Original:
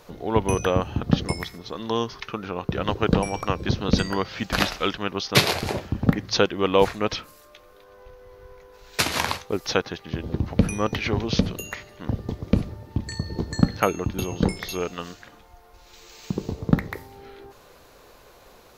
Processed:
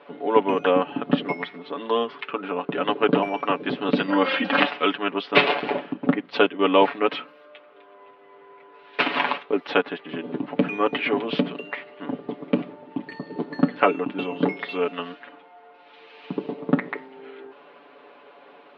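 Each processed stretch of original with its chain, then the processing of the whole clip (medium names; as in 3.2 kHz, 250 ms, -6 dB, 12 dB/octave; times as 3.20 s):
4.08–4.60 s: peaking EQ 510 Hz +4 dB 0.39 oct + comb 3.7 ms, depth 95% + transient shaper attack -2 dB, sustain +11 dB
5.93–6.59 s: gate -28 dBFS, range -6 dB + peaking EQ 1.8 kHz -3 dB 0.28 oct
whole clip: elliptic band-pass 220–3000 Hz, stop band 40 dB; comb 7 ms, depth 82%; trim +1.5 dB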